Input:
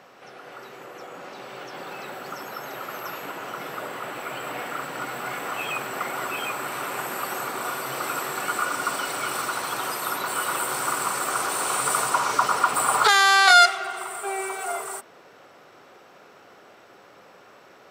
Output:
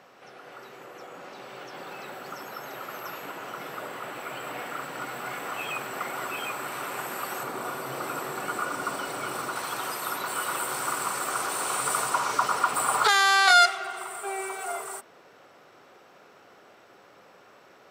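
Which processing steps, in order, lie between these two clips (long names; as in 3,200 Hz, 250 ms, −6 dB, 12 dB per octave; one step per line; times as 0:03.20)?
0:07.43–0:09.56: tilt shelving filter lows +4 dB, about 920 Hz
level −3.5 dB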